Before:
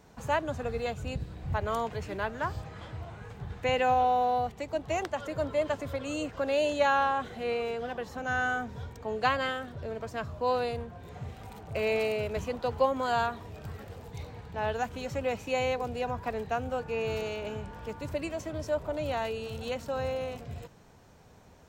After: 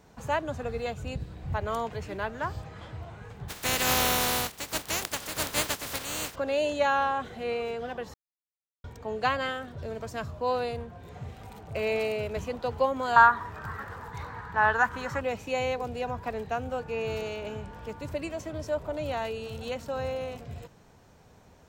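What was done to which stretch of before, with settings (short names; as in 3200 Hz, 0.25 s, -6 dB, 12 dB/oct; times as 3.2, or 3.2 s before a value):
3.48–6.34 spectral contrast lowered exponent 0.26
8.14–8.84 mute
9.78–10.31 tone controls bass +2 dB, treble +6 dB
13.16–15.21 band shelf 1300 Hz +15.5 dB 1.3 oct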